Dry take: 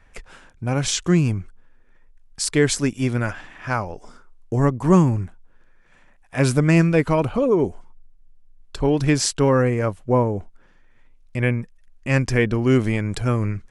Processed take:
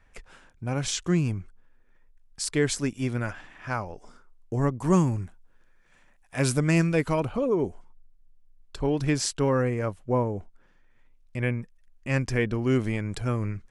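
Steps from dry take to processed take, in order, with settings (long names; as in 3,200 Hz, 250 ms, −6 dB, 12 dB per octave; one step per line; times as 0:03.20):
0:04.79–0:07.20: high-shelf EQ 4,100 Hz +7.5 dB
level −6.5 dB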